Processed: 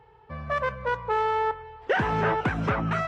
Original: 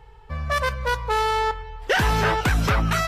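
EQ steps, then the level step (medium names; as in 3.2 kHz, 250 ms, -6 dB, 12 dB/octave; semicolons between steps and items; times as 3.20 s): dynamic bell 4.4 kHz, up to -7 dB, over -46 dBFS, Q 1.6; high-pass 140 Hz 12 dB/octave; tape spacing loss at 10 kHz 27 dB; 0.0 dB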